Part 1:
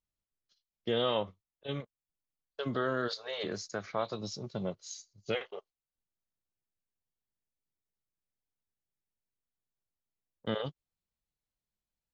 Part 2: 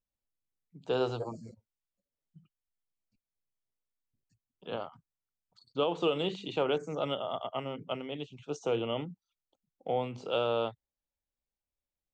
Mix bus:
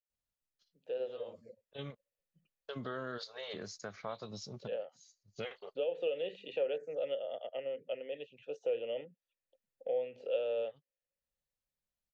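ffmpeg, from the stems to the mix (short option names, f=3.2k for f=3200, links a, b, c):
-filter_complex "[0:a]adelay=100,volume=-3dB[a];[1:a]dynaudnorm=f=350:g=7:m=11.5dB,asplit=3[b][c][d];[b]bandpass=f=530:t=q:w=8,volume=0dB[e];[c]bandpass=f=1.84k:t=q:w=8,volume=-6dB[f];[d]bandpass=f=2.48k:t=q:w=8,volume=-9dB[g];[e][f][g]amix=inputs=3:normalize=0,volume=-1dB,asplit=2[h][i];[i]apad=whole_len=539393[j];[a][j]sidechaincompress=threshold=-51dB:ratio=12:attack=29:release=402[k];[k][h]amix=inputs=2:normalize=0,equalizer=f=330:w=6.1:g=-6.5,acompressor=threshold=-45dB:ratio=1.5"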